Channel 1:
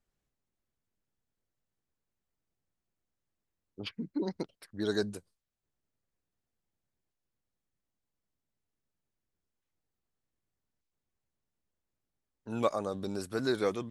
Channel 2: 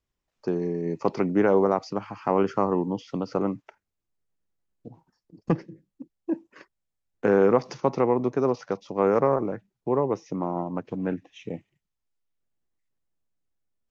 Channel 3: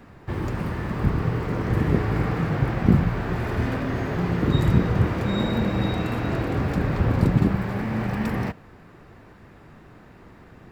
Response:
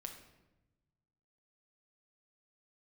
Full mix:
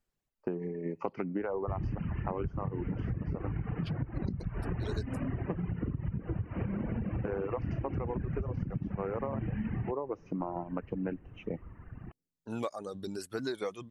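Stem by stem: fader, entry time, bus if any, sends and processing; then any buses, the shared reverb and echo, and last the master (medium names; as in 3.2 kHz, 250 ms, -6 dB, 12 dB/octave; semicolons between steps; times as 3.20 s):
0.0 dB, 0.00 s, no bus, no send, none
-0.5 dB, 0.00 s, bus A, send -13 dB, gate -46 dBFS, range -14 dB
-3.5 dB, 1.40 s, bus A, no send, bass shelf 300 Hz +12 dB
bus A: 0.0 dB, brick-wall FIR low-pass 3.1 kHz; compression, threshold -18 dBFS, peak gain reduction 12 dB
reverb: on, RT60 1.0 s, pre-delay 6 ms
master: reverb removal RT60 1.8 s; compression 6:1, threshold -31 dBFS, peak gain reduction 15 dB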